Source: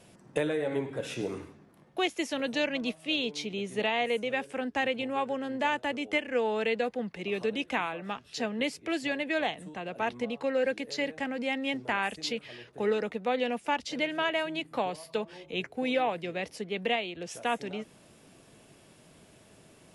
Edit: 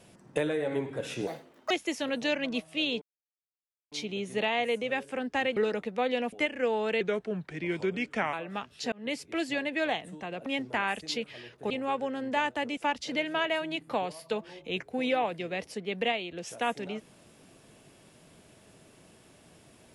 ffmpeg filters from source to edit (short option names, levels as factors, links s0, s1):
-filter_complex "[0:a]asplit=12[s0][s1][s2][s3][s4][s5][s6][s7][s8][s9][s10][s11];[s0]atrim=end=1.274[s12];[s1]atrim=start=1.27:end=2.02,asetpts=PTS-STARTPTS,asetrate=75852,aresample=44100[s13];[s2]atrim=start=2.016:end=3.33,asetpts=PTS-STARTPTS,afade=t=out:st=1.31:d=0.004:c=hsin,apad=pad_dur=0.9[s14];[s3]atrim=start=3.33:end=4.982,asetpts=PTS-STARTPTS,afade=t=in:d=0.004:c=hsin[s15];[s4]atrim=start=12.848:end=13.612[s16];[s5]atrim=start=6.048:end=6.734[s17];[s6]atrim=start=6.73:end=7.87,asetpts=PTS-STARTPTS,asetrate=37926,aresample=44100,atrim=end_sample=58458,asetpts=PTS-STARTPTS[s18];[s7]atrim=start=7.866:end=8.46,asetpts=PTS-STARTPTS,afade=t=out:st=0.59:d=0.004:c=hsin[s19];[s8]atrim=start=8.46:end=10.002,asetpts=PTS-STARTPTS,afade=t=in:d=0.36:c=qsin[s20];[s9]atrim=start=11.608:end=12.852[s21];[s10]atrim=start=4.978:end=6.052[s22];[s11]atrim=start=13.608[s23];[s12][s13]acrossfade=d=0.004:c1=hsin:c2=hsin[s24];[s14][s15]concat=n=2:v=0:a=1[s25];[s24][s25]acrossfade=d=0.004:c1=hsin:c2=hsin[s26];[s26][s16]acrossfade=d=0.004:c1=hsin:c2=hsin[s27];[s27][s17]acrossfade=d=0.004:c1=hsin:c2=hsin[s28];[s28][s18]acrossfade=d=0.004:c1=hsin:c2=hsin[s29];[s19][s20]concat=n=2:v=0:a=1[s30];[s29][s30]acrossfade=d=0.004:c1=hsin:c2=hsin[s31];[s31][s21]acrossfade=d=0.004:c1=hsin:c2=hsin[s32];[s32][s22]acrossfade=d=0.004:c1=hsin:c2=hsin[s33];[s33][s23]acrossfade=d=0.004:c1=hsin:c2=hsin"